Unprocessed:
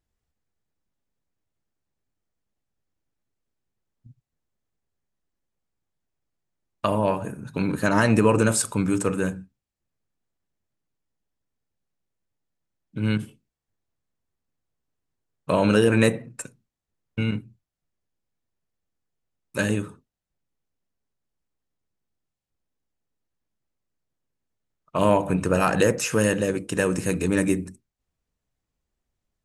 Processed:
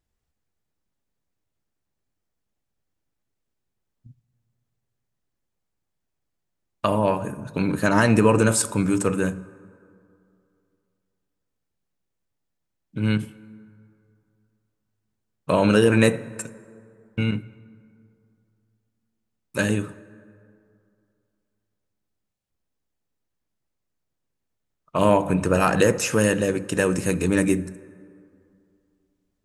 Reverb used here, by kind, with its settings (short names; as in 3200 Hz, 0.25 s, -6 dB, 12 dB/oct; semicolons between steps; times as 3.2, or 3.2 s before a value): plate-style reverb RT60 2.6 s, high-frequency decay 0.45×, DRR 18 dB; gain +1.5 dB